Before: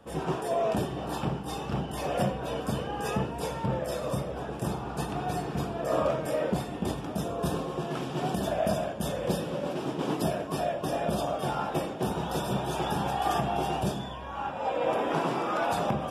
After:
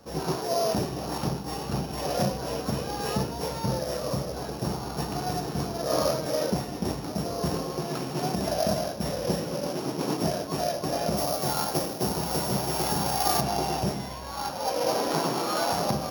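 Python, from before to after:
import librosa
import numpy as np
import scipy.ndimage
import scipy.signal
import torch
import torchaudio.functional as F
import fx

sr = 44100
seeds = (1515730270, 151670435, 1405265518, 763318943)

y = np.r_[np.sort(x[:len(x) // 8 * 8].reshape(-1, 8), axis=1).ravel(), x[len(x) // 8 * 8:]]
y = fx.high_shelf(y, sr, hz=8300.0, db=10.5, at=(11.17, 13.41))
y = F.gain(torch.from_numpy(y), 1.5).numpy()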